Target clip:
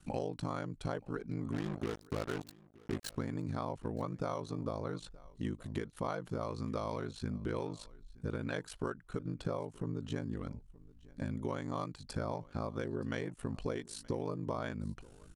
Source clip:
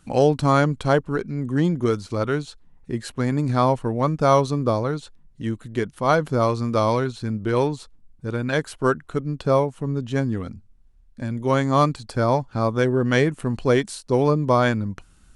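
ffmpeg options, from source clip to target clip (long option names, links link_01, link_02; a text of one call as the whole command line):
ffmpeg -i in.wav -filter_complex "[0:a]acompressor=threshold=-28dB:ratio=20,aeval=exprs='val(0)*sin(2*PI*26*n/s)':channel_layout=same,asplit=3[link_01][link_02][link_03];[link_01]afade=type=out:start_time=1.52:duration=0.02[link_04];[link_02]acrusher=bits=5:mix=0:aa=0.5,afade=type=in:start_time=1.52:duration=0.02,afade=type=out:start_time=3.12:duration=0.02[link_05];[link_03]afade=type=in:start_time=3.12:duration=0.02[link_06];[link_04][link_05][link_06]amix=inputs=3:normalize=0,asplit=2[link_07][link_08];[link_08]aecho=0:1:924:0.075[link_09];[link_07][link_09]amix=inputs=2:normalize=0,volume=-2.5dB" out.wav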